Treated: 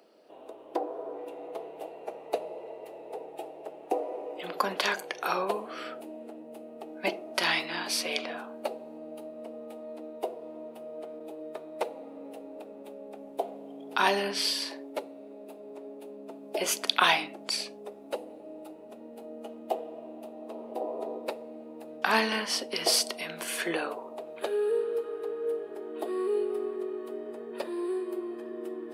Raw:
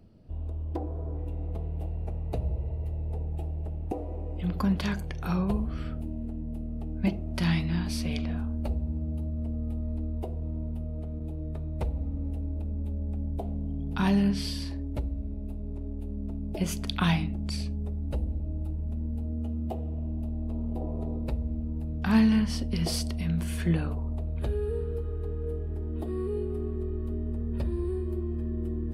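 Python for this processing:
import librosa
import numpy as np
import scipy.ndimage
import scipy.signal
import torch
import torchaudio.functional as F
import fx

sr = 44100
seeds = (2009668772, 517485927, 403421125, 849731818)

y = scipy.signal.sosfilt(scipy.signal.butter(4, 420.0, 'highpass', fs=sr, output='sos'), x)
y = F.gain(torch.from_numpy(y), 8.5).numpy()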